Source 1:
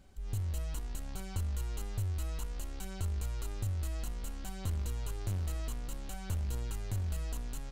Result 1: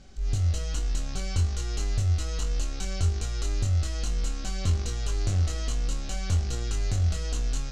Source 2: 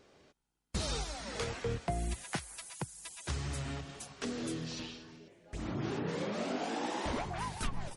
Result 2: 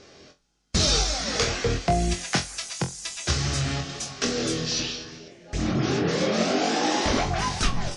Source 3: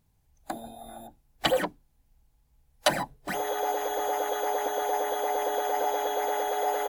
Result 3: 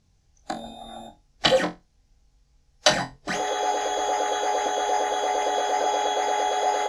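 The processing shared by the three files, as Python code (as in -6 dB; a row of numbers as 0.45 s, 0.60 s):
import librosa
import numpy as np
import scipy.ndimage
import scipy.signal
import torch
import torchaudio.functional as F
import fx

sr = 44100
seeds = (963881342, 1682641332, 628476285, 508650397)

y = fx.lowpass_res(x, sr, hz=5800.0, q=2.4)
y = fx.notch(y, sr, hz=940.0, q=7.1)
y = fx.room_flutter(y, sr, wall_m=3.9, rt60_s=0.21)
y = y * 10.0 ** (-26 / 20.0) / np.sqrt(np.mean(np.square(y)))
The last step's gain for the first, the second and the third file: +7.5 dB, +11.0 dB, +3.5 dB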